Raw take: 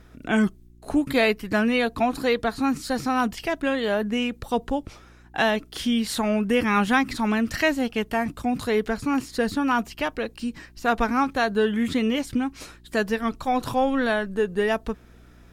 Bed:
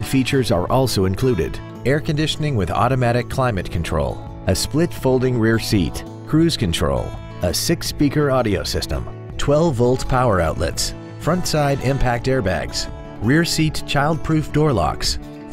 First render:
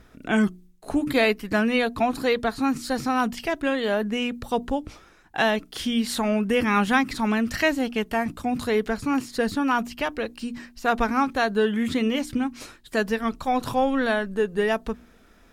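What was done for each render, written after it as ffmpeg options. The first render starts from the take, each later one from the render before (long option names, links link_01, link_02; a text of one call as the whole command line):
ffmpeg -i in.wav -af "bandreject=frequency=60:width_type=h:width=4,bandreject=frequency=120:width_type=h:width=4,bandreject=frequency=180:width_type=h:width=4,bandreject=frequency=240:width_type=h:width=4,bandreject=frequency=300:width_type=h:width=4,bandreject=frequency=360:width_type=h:width=4" out.wav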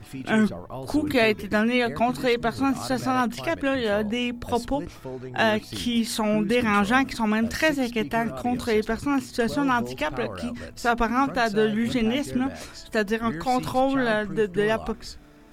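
ffmpeg -i in.wav -i bed.wav -filter_complex "[1:a]volume=-19dB[link_01];[0:a][link_01]amix=inputs=2:normalize=0" out.wav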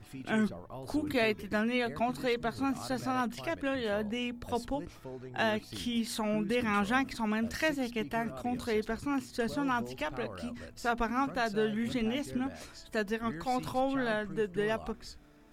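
ffmpeg -i in.wav -af "volume=-8.5dB" out.wav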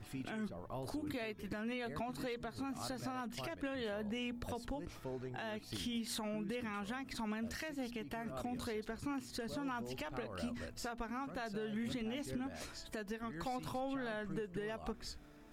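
ffmpeg -i in.wav -af "acompressor=threshold=-35dB:ratio=6,alimiter=level_in=7.5dB:limit=-24dB:level=0:latency=1:release=165,volume=-7.5dB" out.wav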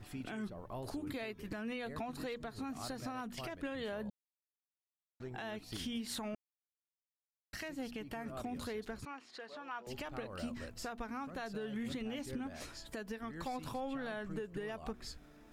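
ffmpeg -i in.wav -filter_complex "[0:a]asettb=1/sr,asplit=3[link_01][link_02][link_03];[link_01]atrim=end=9.054[link_04];[link_02]atrim=start=9.05:end=9.87,asetpts=PTS-STARTPTS,afade=type=in:duration=0.004:curve=qsin,afade=type=out:start_time=0.816:duration=0.004:curve=qsin,highpass=610,lowpass=3700[link_05];[link_03]atrim=start=9.866[link_06];[link_04][link_05]acrossfade=duration=0.004:curve1=hsin:curve2=qsin[link_07];[link_07][link_06]acrossfade=duration=0.004:curve1=qsin:curve2=hsin,asplit=5[link_08][link_09][link_10][link_11][link_12];[link_08]atrim=end=4.1,asetpts=PTS-STARTPTS,afade=type=out:start_time=4.096:duration=0.004:curve=hsin[link_13];[link_09]atrim=start=4.1:end=5.2,asetpts=PTS-STARTPTS,volume=0[link_14];[link_10]atrim=start=5.2:end=6.35,asetpts=PTS-STARTPTS,afade=type=in:duration=0.004:curve=hsin,afade=type=out:start_time=1.146:duration=0.004:curve=hsin[link_15];[link_11]atrim=start=6.35:end=7.53,asetpts=PTS-STARTPTS,volume=0[link_16];[link_12]atrim=start=7.53,asetpts=PTS-STARTPTS,afade=type=in:duration=0.004:curve=hsin[link_17];[link_13][link_14][link_15][link_16][link_17]concat=n=5:v=0:a=1" out.wav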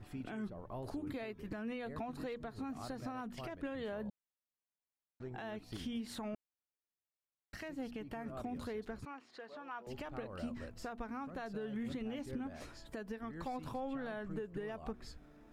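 ffmpeg -i in.wav -af "highshelf=frequency=2300:gain=-9" out.wav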